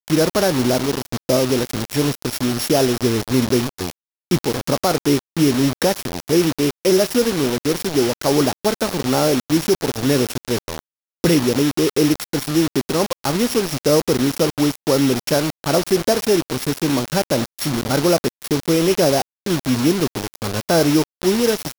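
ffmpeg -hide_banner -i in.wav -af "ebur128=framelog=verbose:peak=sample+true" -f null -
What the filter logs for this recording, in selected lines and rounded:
Integrated loudness:
  I:         -18.9 LUFS
  Threshold: -29.0 LUFS
Loudness range:
  LRA:         1.4 LU
  Threshold: -39.0 LUFS
  LRA low:   -19.8 LUFS
  LRA high:  -18.4 LUFS
Sample peak:
  Peak:       -7.9 dBFS
True peak:
  Peak:       -6.0 dBFS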